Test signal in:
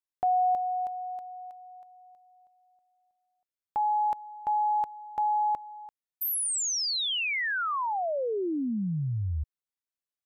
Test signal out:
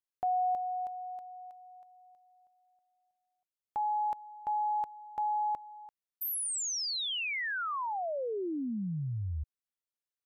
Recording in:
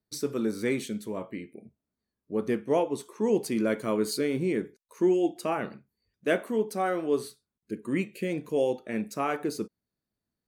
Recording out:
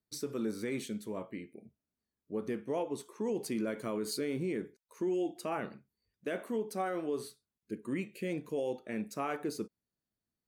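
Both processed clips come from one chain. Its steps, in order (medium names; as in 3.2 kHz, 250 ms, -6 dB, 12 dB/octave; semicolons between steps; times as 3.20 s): peak limiter -21 dBFS; trim -5 dB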